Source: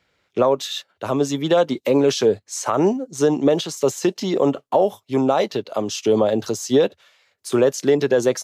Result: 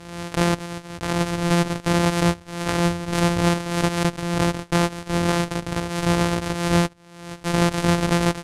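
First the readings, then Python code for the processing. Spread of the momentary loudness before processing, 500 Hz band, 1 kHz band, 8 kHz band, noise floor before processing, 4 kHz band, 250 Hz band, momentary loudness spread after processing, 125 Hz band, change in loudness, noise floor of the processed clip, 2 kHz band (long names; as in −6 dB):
7 LU, −8.5 dB, +0.5 dB, −1.0 dB, −71 dBFS, +1.0 dB, −0.5 dB, 7 LU, +8.0 dB, −2.0 dB, −46 dBFS, +6.5 dB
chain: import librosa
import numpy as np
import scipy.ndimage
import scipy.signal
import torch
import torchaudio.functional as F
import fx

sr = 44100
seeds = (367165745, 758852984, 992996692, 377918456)

y = np.r_[np.sort(x[:len(x) // 256 * 256].reshape(-1, 256), axis=1).ravel(), x[len(x) // 256 * 256:]]
y = scipy.signal.sosfilt(scipy.signal.butter(4, 11000.0, 'lowpass', fs=sr, output='sos'), y)
y = fx.pre_swell(y, sr, db_per_s=61.0)
y = F.gain(torch.from_numpy(y), -3.5).numpy()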